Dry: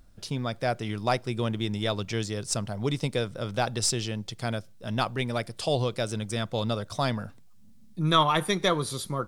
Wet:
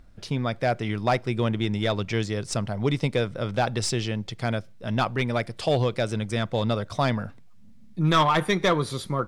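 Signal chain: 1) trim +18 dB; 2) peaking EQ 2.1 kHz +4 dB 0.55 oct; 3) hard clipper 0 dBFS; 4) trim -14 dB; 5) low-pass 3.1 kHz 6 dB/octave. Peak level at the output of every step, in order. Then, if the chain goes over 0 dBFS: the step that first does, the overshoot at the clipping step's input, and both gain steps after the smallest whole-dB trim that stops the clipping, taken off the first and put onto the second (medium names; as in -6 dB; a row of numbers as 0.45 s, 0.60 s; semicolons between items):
+9.0 dBFS, +9.0 dBFS, 0.0 dBFS, -14.0 dBFS, -14.0 dBFS; step 1, 9.0 dB; step 1 +9 dB, step 4 -5 dB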